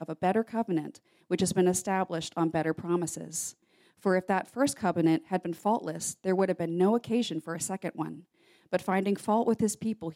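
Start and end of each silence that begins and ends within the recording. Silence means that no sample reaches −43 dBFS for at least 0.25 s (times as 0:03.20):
0:00.97–0:01.30
0:03.52–0:04.04
0:08.20–0:08.73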